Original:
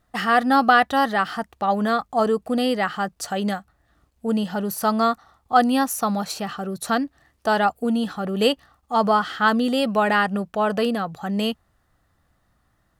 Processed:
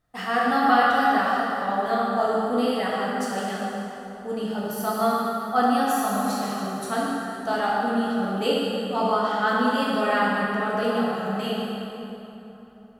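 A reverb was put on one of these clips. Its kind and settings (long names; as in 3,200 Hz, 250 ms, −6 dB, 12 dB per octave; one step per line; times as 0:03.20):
dense smooth reverb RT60 3.4 s, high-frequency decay 0.65×, DRR −6.5 dB
level −9.5 dB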